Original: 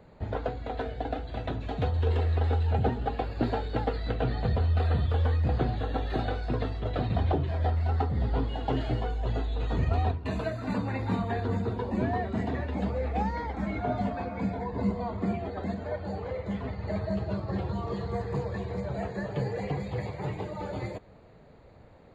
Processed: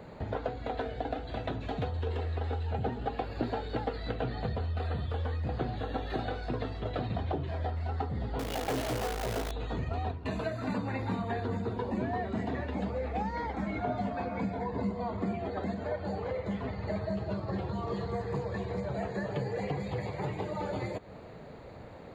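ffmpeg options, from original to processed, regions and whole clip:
ffmpeg -i in.wav -filter_complex "[0:a]asettb=1/sr,asplit=3[link_01][link_02][link_03];[link_01]atrim=end=8.394[link_04];[link_02]atrim=start=8.39:end=9.51,asetpts=PTS-STARTPTS,afade=type=in:duration=0.004:curve=qsin,afade=type=out:start_time=1.116:duration=0.004:curve=qsin,equalizer=frequency=550:width_type=o:width=1.3:gain=7.5,acrusher=bits=6:dc=4:mix=0:aa=0.000001,asoftclip=type=hard:threshold=-26dB[link_05];[link_03]atrim=start=9.506[link_06];[link_04][link_05]acrossfade=duration=0.004:curve1=hsin:curve2=qsin[link_07];[link_07][link_06]acrossfade=duration=0.004:curve1=qsin:curve2=hsin,acompressor=threshold=-42dB:ratio=2.5,lowshelf=frequency=65:gain=-10,volume=8dB" out.wav

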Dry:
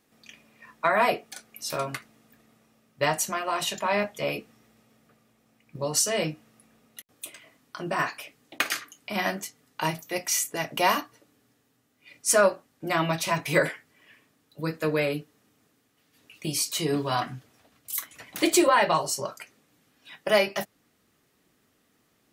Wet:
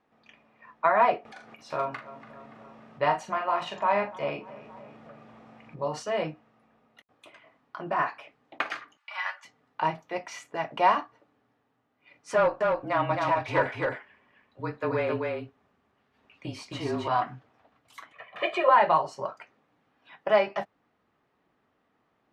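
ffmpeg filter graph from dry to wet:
ffmpeg -i in.wav -filter_complex "[0:a]asettb=1/sr,asplit=3[link_01][link_02][link_03];[link_01]atrim=end=1.254[link_04];[link_02]atrim=start=1.25:end=6.03,asetpts=PTS-STARTPTS,afade=type=in:duration=0.004:curve=qsin,afade=type=out:start_time=4.776:duration=0.004:curve=qsin,asplit=2[link_05][link_06];[link_06]adelay=41,volume=-8dB[link_07];[link_05][link_07]amix=inputs=2:normalize=0,atrim=end_sample=210798,asplit=2[link_08][link_09];[link_09]adelay=287,lowpass=frequency=2500:poles=1,volume=-23.5dB,asplit=2[link_10][link_11];[link_11]adelay=287,lowpass=frequency=2500:poles=1,volume=0.51,asplit=2[link_12][link_13];[link_13]adelay=287,lowpass=frequency=2500:poles=1,volume=0.51[link_14];[link_08][link_10][link_12][link_14]amix=inputs=4:normalize=0,atrim=end_sample=210798,acompressor=mode=upward:threshold=-32dB:ratio=2.5:attack=3.2:release=140:knee=2.83:detection=peak[link_15];[link_03]atrim=start=6.026[link_16];[link_04][link_15]acrossfade=duration=0.004:curve1=hsin:curve2=qsin[link_17];[link_17][link_16]acrossfade=duration=0.004:curve1=qsin:curve2=hsin,asettb=1/sr,asplit=3[link_18][link_19][link_20];[link_18]atrim=end=8.974[link_21];[link_19]atrim=start=8.97:end=9.45,asetpts=PTS-STARTPTS,afade=type=in:duration=0.004:curve=qsin,afade=type=out:start_time=0.476:duration=0.004:curve=qsin,highpass=frequency=1100:width=0.5412,highpass=frequency=1100:width=1.3066,aecho=1:1:3.5:0.71,atrim=end_sample=21168[link_22];[link_20]atrim=start=9.446[link_23];[link_21][link_22]acrossfade=duration=0.004:curve1=hsin:curve2=qsin[link_24];[link_24][link_23]acrossfade=duration=0.004:curve1=qsin:curve2=hsin,asettb=1/sr,asplit=3[link_25][link_26][link_27];[link_25]atrim=end=12.344[link_28];[link_26]atrim=start=12.34:end=17.08,asetpts=PTS-STARTPTS,afade=type=in:duration=0.004:curve=qsin,afade=type=out:start_time=4.736:duration=0.004:curve=qsin,asoftclip=type=hard:threshold=-17.5dB,afreqshift=-29,aecho=1:1:264:0.708,atrim=end_sample=209034[link_29];[link_27]atrim=start=17.076[link_30];[link_28][link_29]acrossfade=duration=0.004:curve1=hsin:curve2=qsin[link_31];[link_31][link_30]acrossfade=duration=0.004:curve1=qsin:curve2=hsin,asettb=1/sr,asplit=3[link_32][link_33][link_34];[link_32]atrim=end=18.124[link_35];[link_33]atrim=start=18.12:end=18.69,asetpts=PTS-STARTPTS,afade=type=in:duration=0.004:curve=qsin,afade=type=out:start_time=0.566:duration=0.004:curve=qsin,highpass=frequency=390:poles=1,highshelf=frequency=4000:width_type=q:width=1.5:gain=-10.5,aecho=1:1:1.7:0.84,atrim=end_sample=25137[link_36];[link_34]atrim=start=18.686[link_37];[link_35][link_36]acrossfade=duration=0.004:curve1=hsin:curve2=qsin[link_38];[link_38][link_37]acrossfade=duration=0.004:curve1=qsin:curve2=hsin,lowpass=2800,equalizer=frequency=880:width_type=o:width=1.4:gain=9.5,volume=-6dB" out.wav

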